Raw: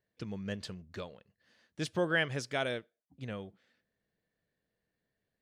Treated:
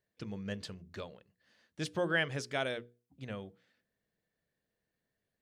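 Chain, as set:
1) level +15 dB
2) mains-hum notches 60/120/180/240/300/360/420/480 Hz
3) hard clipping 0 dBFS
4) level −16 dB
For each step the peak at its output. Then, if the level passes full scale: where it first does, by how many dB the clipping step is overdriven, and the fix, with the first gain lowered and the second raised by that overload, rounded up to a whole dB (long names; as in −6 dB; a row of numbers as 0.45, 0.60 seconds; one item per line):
−2.5, −2.5, −2.5, −18.5 dBFS
no step passes full scale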